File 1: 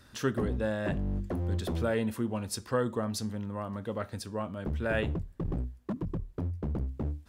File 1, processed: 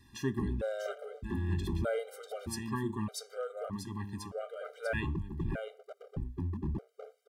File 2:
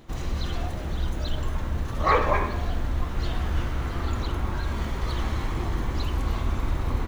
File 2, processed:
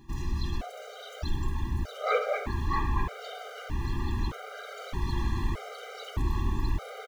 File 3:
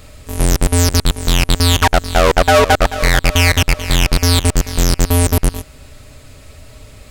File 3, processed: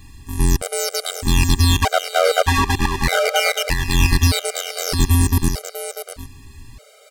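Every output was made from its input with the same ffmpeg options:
ffmpeg -i in.wav -filter_complex "[0:a]asplit=2[link_01][link_02];[link_02]aecho=0:1:644:0.501[link_03];[link_01][link_03]amix=inputs=2:normalize=0,afftfilt=real='re*gt(sin(2*PI*0.81*pts/sr)*(1-2*mod(floor(b*sr/1024/400),2)),0)':imag='im*gt(sin(2*PI*0.81*pts/sr)*(1-2*mod(floor(b*sr/1024/400),2)),0)':win_size=1024:overlap=0.75,volume=-2dB" out.wav

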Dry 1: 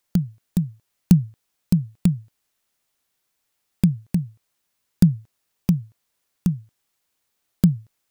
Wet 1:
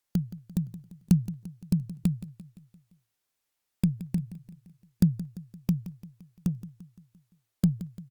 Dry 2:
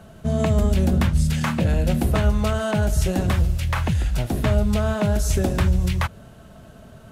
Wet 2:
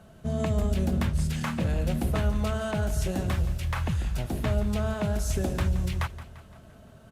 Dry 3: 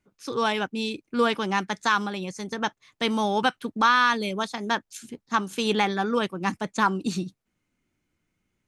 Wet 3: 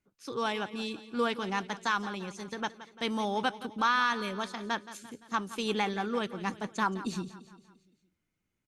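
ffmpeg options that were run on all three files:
ffmpeg -i in.wav -af "aecho=1:1:172|344|516|688|860:0.178|0.0925|0.0481|0.025|0.013,volume=-7dB" -ar 48000 -c:a libopus -b:a 64k out.opus

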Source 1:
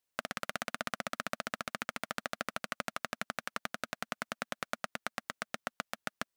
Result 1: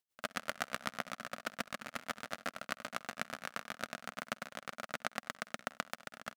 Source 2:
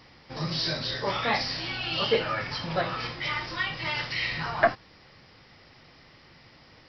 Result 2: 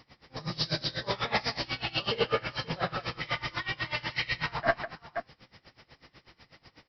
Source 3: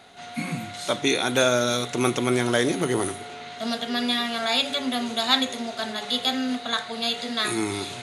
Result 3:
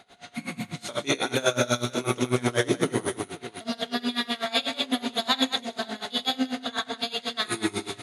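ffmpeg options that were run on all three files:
ffmpeg -i in.wav -af "aecho=1:1:50|65|98|206|527:0.473|0.531|0.126|0.531|0.251,aeval=exprs='val(0)*pow(10,-22*(0.5-0.5*cos(2*PI*8.1*n/s))/20)':channel_layout=same" out.wav

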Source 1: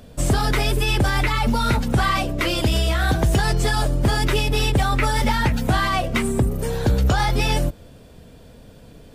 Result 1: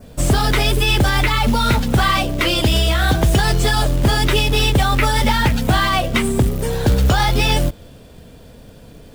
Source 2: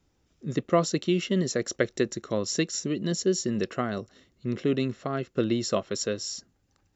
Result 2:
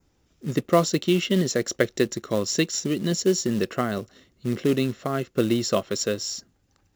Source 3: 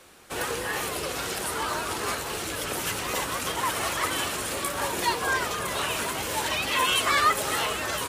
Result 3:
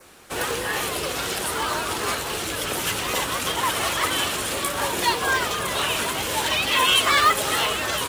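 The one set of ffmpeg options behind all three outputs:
ffmpeg -i in.wav -af "acrusher=bits=5:mode=log:mix=0:aa=0.000001,adynamicequalizer=threshold=0.0112:dfrequency=3300:dqfactor=2.3:tfrequency=3300:tqfactor=2.3:attack=5:release=100:ratio=0.375:range=2:mode=boostabove:tftype=bell,volume=3.5dB" out.wav

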